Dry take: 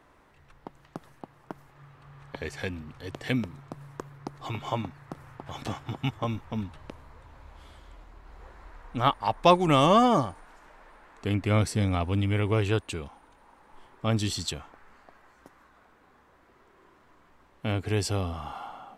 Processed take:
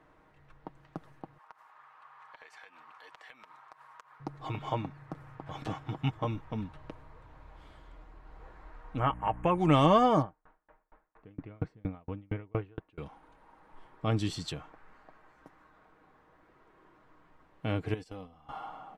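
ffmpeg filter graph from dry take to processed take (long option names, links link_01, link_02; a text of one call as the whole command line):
ffmpeg -i in.wav -filter_complex "[0:a]asettb=1/sr,asplit=3[link_01][link_02][link_03];[link_01]atrim=end=1.384[link_04];[link_02]atrim=start=1.38:end=4.2,asetpts=PTS-STARTPTS,afade=type=in:duration=0.004:curve=qsin,afade=type=out:start_time=2.816:duration=0.004:curve=qsin,highpass=frequency=1000:width_type=q:width=2.4,acompressor=threshold=-45dB:ratio=6:attack=3.2:release=140:knee=1:detection=peak[link_05];[link_03]atrim=start=4.196[link_06];[link_04][link_05]acrossfade=duration=0.004:curve1=hsin:curve2=qsin[link_07];[link_07][link_06]acrossfade=duration=0.004:curve1=qsin:curve2=hsin,asettb=1/sr,asplit=3[link_08][link_09][link_10];[link_08]atrim=end=8.994[link_11];[link_09]atrim=start=8.99:end=9.58,asetpts=PTS-STARTPTS,afade=type=in:duration=0.004:curve=qsin,afade=type=out:start_time=0.586:duration=0.004:curve=qsin,aeval=exprs='val(0)+0.01*(sin(2*PI*60*n/s)+sin(2*PI*2*60*n/s)/2+sin(2*PI*3*60*n/s)/3+sin(2*PI*4*60*n/s)/4+sin(2*PI*5*60*n/s)/5)':channel_layout=same,acompressor=threshold=-20dB:ratio=2.5:attack=3.2:release=140:knee=1:detection=peak,asuperstop=centerf=4500:order=12:qfactor=1.4[link_12];[link_10]atrim=start=9.576[link_13];[link_11][link_12]acrossfade=duration=0.004:curve1=hsin:curve2=qsin[link_14];[link_14][link_13]acrossfade=duration=0.004:curve1=qsin:curve2=hsin,asettb=1/sr,asplit=3[link_15][link_16][link_17];[link_15]atrim=end=10.224[link_18];[link_16]atrim=start=10.22:end=12.98,asetpts=PTS-STARTPTS,afade=type=in:duration=0.004:curve=qsin,afade=type=out:start_time=2.756:duration=0.004:curve=qsin,lowpass=2000,aeval=exprs='val(0)*pow(10,-39*if(lt(mod(4.3*n/s,1),2*abs(4.3)/1000),1-mod(4.3*n/s,1)/(2*abs(4.3)/1000),(mod(4.3*n/s,1)-2*abs(4.3)/1000)/(1-2*abs(4.3)/1000))/20)':channel_layout=same[link_19];[link_17]atrim=start=12.976[link_20];[link_18][link_19]acrossfade=duration=0.004:curve1=hsin:curve2=qsin[link_21];[link_21][link_20]acrossfade=duration=0.004:curve1=qsin:curve2=hsin,asettb=1/sr,asplit=3[link_22][link_23][link_24];[link_22]atrim=end=17.944[link_25];[link_23]atrim=start=17.94:end=18.49,asetpts=PTS-STARTPTS,afade=type=in:duration=0.004:curve=qsin,afade=type=out:start_time=0.546:duration=0.004:curve=qsin,agate=range=-20dB:threshold=-29dB:ratio=16:release=100:detection=peak,aecho=1:1:4:0.56,atrim=end_sample=24255,acompressor=threshold=-37dB:ratio=6:attack=3.2:release=140:knee=1:detection=peak[link_26];[link_24]atrim=start=18.486[link_27];[link_25][link_26]acrossfade=duration=0.004:curve1=hsin:curve2=qsin[link_28];[link_28][link_27]acrossfade=duration=0.004:curve1=qsin:curve2=hsin,highshelf=frequency=4200:gain=-12,aecho=1:1:6.4:0.41,volume=-2.5dB" out.wav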